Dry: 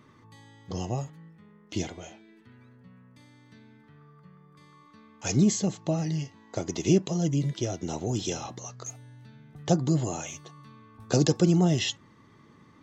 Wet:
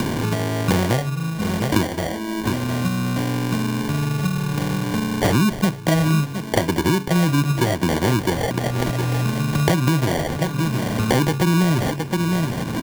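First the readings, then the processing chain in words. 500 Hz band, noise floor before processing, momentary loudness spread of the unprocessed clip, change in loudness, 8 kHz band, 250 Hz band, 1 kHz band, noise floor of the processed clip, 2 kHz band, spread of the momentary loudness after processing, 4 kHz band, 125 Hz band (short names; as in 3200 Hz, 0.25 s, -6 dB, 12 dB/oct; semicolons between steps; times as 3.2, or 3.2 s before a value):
+8.5 dB, -57 dBFS, 17 LU, +7.0 dB, n/a, +9.0 dB, +15.0 dB, -29 dBFS, +17.5 dB, 5 LU, +9.0 dB, +10.0 dB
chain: LPF 2000 Hz 6 dB/oct; notch 430 Hz, Q 12; de-hum 136.7 Hz, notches 3; in parallel at -1 dB: compressor, threshold -40 dBFS, peak gain reduction 21.5 dB; on the sum: sample-and-hold 34×; on a send: echo 0.712 s -18 dB; on the sum: maximiser +18 dB; three-band squash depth 100%; gain -7.5 dB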